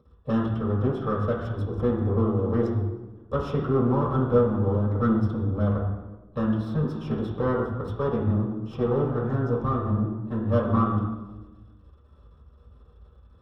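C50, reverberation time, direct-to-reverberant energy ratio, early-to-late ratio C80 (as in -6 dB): 3.0 dB, 1.2 s, -7.0 dB, 6.0 dB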